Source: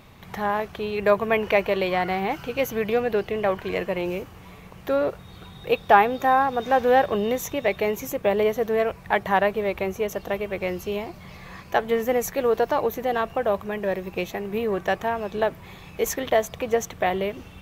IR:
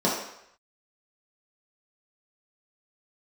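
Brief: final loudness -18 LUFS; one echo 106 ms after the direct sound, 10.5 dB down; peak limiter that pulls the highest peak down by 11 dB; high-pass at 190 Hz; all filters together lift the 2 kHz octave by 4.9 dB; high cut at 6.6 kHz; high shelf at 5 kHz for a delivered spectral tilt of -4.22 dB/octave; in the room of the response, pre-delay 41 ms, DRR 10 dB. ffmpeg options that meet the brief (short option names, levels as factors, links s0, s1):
-filter_complex "[0:a]highpass=190,lowpass=6600,equalizer=f=2000:t=o:g=5.5,highshelf=f=5000:g=3,alimiter=limit=0.266:level=0:latency=1,aecho=1:1:106:0.299,asplit=2[s0][s1];[1:a]atrim=start_sample=2205,adelay=41[s2];[s1][s2]afir=irnorm=-1:irlink=0,volume=0.0562[s3];[s0][s3]amix=inputs=2:normalize=0,volume=2"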